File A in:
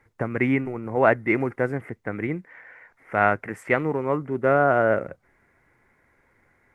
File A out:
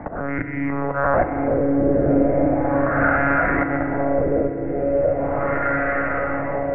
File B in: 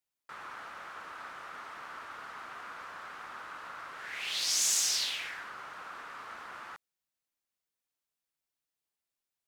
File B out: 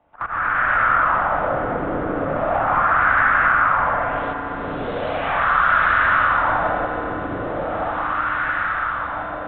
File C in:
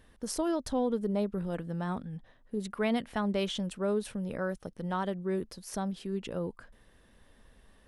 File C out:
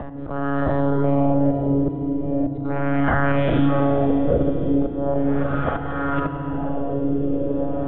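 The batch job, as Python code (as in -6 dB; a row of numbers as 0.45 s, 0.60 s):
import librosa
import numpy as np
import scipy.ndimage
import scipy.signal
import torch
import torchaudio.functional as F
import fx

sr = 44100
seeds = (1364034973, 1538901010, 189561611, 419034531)

y = fx.spec_dilate(x, sr, span_ms=240)
y = fx.lpc_monotone(y, sr, seeds[0], pitch_hz=140.0, order=16)
y = fx.peak_eq(y, sr, hz=980.0, db=-6.5, octaves=0.57)
y = fx.level_steps(y, sr, step_db=15)
y = fx.echo_diffused(y, sr, ms=1047, feedback_pct=50, wet_db=-7)
y = fx.auto_swell(y, sr, attack_ms=723.0)
y = fx.filter_lfo_lowpass(y, sr, shape='sine', hz=0.38, low_hz=400.0, high_hz=1600.0, q=2.5)
y = fx.peak_eq(y, sr, hz=410.0, db=-7.5, octaves=0.34)
y = fx.rev_fdn(y, sr, rt60_s=2.3, lf_ratio=1.6, hf_ratio=1.0, size_ms=20.0, drr_db=6.5)
y = fx.band_squash(y, sr, depth_pct=70)
y = y * 10.0 ** (-20 / 20.0) / np.sqrt(np.mean(np.square(y)))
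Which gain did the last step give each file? +7.0 dB, +23.0 dB, +12.5 dB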